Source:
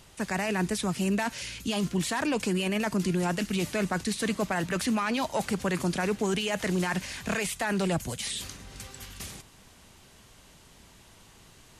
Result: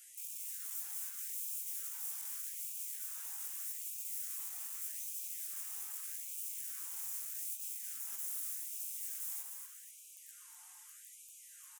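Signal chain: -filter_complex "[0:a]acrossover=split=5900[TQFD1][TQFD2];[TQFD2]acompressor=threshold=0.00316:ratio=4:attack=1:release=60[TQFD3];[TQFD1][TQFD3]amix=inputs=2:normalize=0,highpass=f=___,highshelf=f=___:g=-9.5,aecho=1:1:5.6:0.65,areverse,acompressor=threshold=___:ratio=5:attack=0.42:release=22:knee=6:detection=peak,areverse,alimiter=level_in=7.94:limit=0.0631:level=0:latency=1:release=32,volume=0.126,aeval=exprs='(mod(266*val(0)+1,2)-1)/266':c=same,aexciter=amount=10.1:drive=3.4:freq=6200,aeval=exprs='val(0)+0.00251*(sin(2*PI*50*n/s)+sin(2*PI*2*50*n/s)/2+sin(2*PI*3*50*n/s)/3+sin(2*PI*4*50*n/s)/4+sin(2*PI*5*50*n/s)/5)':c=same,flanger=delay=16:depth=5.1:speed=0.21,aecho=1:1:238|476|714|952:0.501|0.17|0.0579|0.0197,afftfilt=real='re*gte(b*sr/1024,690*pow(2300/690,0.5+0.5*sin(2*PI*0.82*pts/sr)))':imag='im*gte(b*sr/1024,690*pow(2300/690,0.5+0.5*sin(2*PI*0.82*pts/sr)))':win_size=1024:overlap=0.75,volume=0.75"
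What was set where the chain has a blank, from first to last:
460, 2900, 0.00501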